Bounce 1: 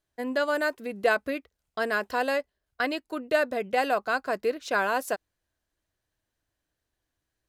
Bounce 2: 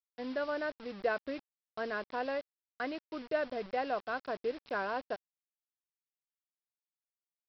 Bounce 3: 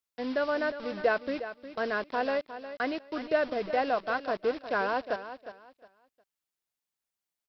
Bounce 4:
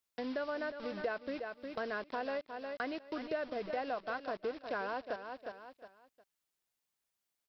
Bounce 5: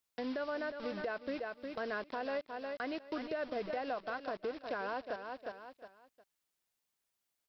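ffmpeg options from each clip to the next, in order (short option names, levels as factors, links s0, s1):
-af "lowpass=f=1400:p=1,aresample=11025,acrusher=bits=6:mix=0:aa=0.000001,aresample=44100,volume=0.422"
-af "aecho=1:1:359|718|1077:0.251|0.0603|0.0145,volume=2"
-af "acompressor=threshold=0.00794:ratio=2.5,volume=1.26"
-af "alimiter=level_in=1.88:limit=0.0631:level=0:latency=1:release=76,volume=0.531,volume=1.12"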